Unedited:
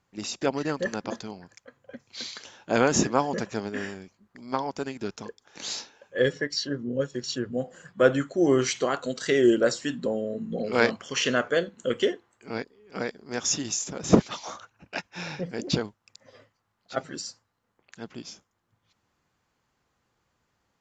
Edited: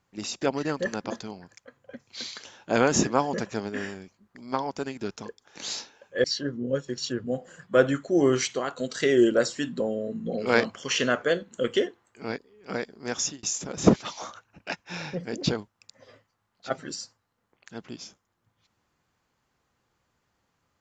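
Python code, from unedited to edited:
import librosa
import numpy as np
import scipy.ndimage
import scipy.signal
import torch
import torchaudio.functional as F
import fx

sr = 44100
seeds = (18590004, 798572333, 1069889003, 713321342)

y = fx.edit(x, sr, fx.cut(start_s=6.24, length_s=0.26),
    fx.clip_gain(start_s=8.74, length_s=0.31, db=-3.5),
    fx.fade_out_span(start_s=13.43, length_s=0.26), tone=tone)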